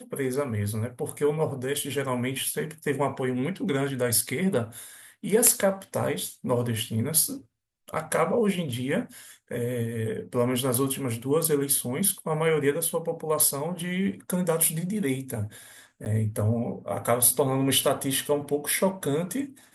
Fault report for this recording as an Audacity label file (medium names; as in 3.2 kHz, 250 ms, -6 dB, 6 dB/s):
16.050000	16.060000	dropout 9.3 ms